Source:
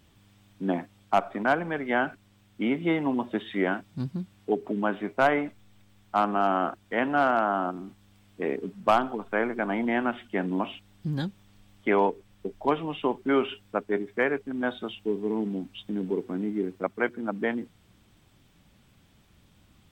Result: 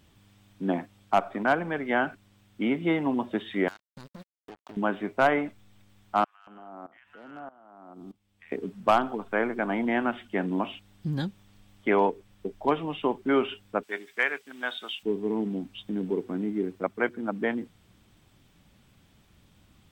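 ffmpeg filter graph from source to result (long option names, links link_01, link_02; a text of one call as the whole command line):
ffmpeg -i in.wav -filter_complex "[0:a]asettb=1/sr,asplit=3[link_01][link_02][link_03];[link_01]atrim=end=3.684[link_04];[link_02]atrim=start=3.68:end=4.77,asetpts=PTS-STARTPTS,afade=type=in:duration=0.004:curve=qsin,afade=type=out:start_time=1.086:duration=0.004:curve=qsin,lowshelf=frequency=780:width_type=q:width=1.5:gain=-10,acompressor=threshold=-40dB:ratio=20:attack=3.2:release=140:knee=1:detection=peak,acrusher=bits=6:mix=0:aa=0.5[link_05];[link_03]atrim=start=4.766[link_06];[link_04][link_05]acrossfade=duration=0.004:curve1=hsin:curve2=qsin[link_07];[link_07][link_06]acrossfade=duration=0.004:curve1=qsin:curve2=hsin,asettb=1/sr,asplit=3[link_08][link_09][link_10];[link_08]atrim=end=6.244[link_11];[link_09]atrim=start=6.24:end=8.52,asetpts=PTS-STARTPTS,afade=type=in:duration=0.004:curve=qsin,afade=type=out:start_time=2.276:duration=0.004:curve=qsin,acrossover=split=1400[link_12][link_13];[link_12]adelay=230[link_14];[link_14][link_13]amix=inputs=2:normalize=0,atrim=end_sample=100548,acompressor=threshold=-37dB:ratio=5:attack=3.2:release=140:knee=1:detection=peak,aeval=exprs='val(0)*pow(10,-19*if(lt(mod(-1.6*n/s,1),2*abs(-1.6)/1000),1-mod(-1.6*n/s,1)/(2*abs(-1.6)/1000),(mod(-1.6*n/s,1)-2*abs(-1.6)/1000)/(1-2*abs(-1.6)/1000))/20)':channel_layout=same[link_15];[link_10]atrim=start=8.516[link_16];[link_11][link_15]acrossfade=duration=0.004:curve1=hsin:curve2=qsin[link_17];[link_17][link_16]acrossfade=duration=0.004:curve1=qsin:curve2=hsin,asettb=1/sr,asplit=3[link_18][link_19][link_20];[link_18]atrim=end=13.834[link_21];[link_19]atrim=start=13.83:end=15.03,asetpts=PTS-STARTPTS,afade=type=in:duration=0.004:curve=qsin,afade=type=out:start_time=1.196:duration=0.004:curve=qsin,highpass=frequency=460:poles=1,tiltshelf=frequency=1200:gain=-9.5[link_22];[link_20]atrim=start=15.026[link_23];[link_21][link_22]acrossfade=duration=0.004:curve1=hsin:curve2=qsin[link_24];[link_24][link_23]acrossfade=duration=0.004:curve1=qsin:curve2=hsin" out.wav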